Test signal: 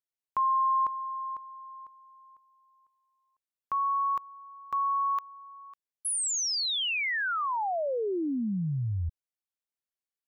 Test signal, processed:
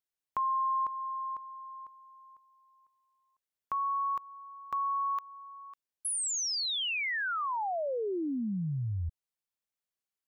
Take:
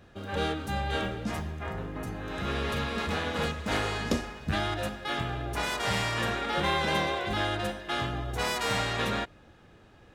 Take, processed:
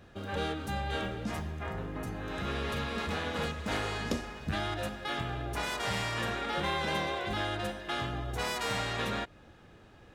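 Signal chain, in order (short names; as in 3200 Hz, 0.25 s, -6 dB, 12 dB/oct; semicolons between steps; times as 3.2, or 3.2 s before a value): compressor 1.5:1, threshold -36 dBFS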